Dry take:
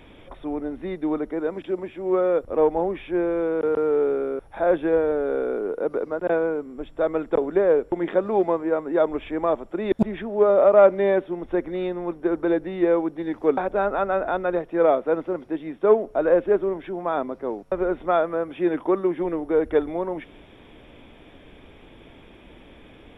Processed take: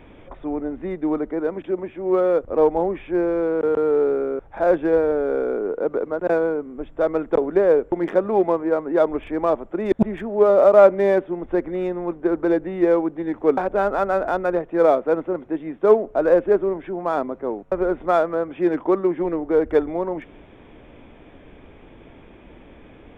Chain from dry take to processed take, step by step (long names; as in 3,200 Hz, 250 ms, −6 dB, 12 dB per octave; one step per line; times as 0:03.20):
adaptive Wiener filter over 9 samples
level +2.5 dB